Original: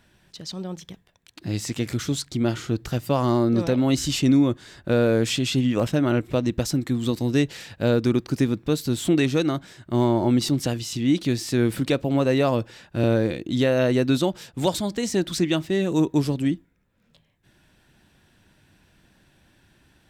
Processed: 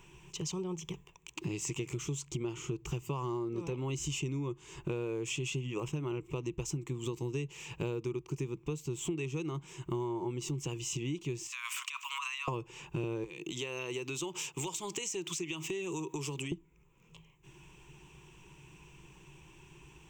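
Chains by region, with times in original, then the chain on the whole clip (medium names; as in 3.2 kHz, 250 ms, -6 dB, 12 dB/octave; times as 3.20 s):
11.47–12.48 s: steep high-pass 1 kHz 96 dB/octave + compressor with a negative ratio -39 dBFS
13.24–16.52 s: high-pass 170 Hz + tilt shelf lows -5.5 dB, about 1.2 kHz + compression 5:1, threshold -33 dBFS
whole clip: rippled EQ curve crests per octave 0.72, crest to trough 17 dB; compression 8:1, threshold -34 dBFS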